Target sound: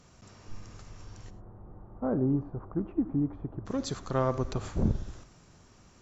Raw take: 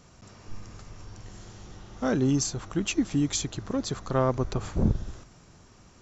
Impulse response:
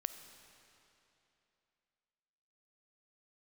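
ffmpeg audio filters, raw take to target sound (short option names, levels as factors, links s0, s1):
-filter_complex "[0:a]asplit=3[s0][s1][s2];[s0]afade=t=out:st=1.29:d=0.02[s3];[s1]lowpass=f=1100:w=0.5412,lowpass=f=1100:w=1.3066,afade=t=in:st=1.29:d=0.02,afade=t=out:st=3.65:d=0.02[s4];[s2]afade=t=in:st=3.65:d=0.02[s5];[s3][s4][s5]amix=inputs=3:normalize=0[s6];[1:a]atrim=start_sample=2205,atrim=end_sample=4410,asetrate=39249,aresample=44100[s7];[s6][s7]afir=irnorm=-1:irlink=0,volume=0.794"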